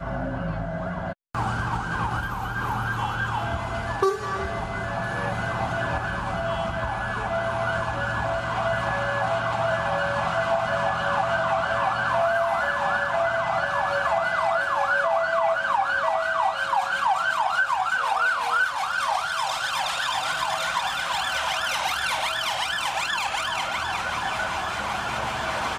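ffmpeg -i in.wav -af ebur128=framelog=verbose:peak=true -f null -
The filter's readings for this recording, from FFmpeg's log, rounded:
Integrated loudness:
  I:         -24.8 LUFS
  Threshold: -34.8 LUFS
Loudness range:
  LRA:         4.3 LU
  Threshold: -44.6 LUFS
  LRA low:   -27.2 LUFS
  LRA high:  -22.9 LUFS
True peak:
  Peak:       -9.9 dBFS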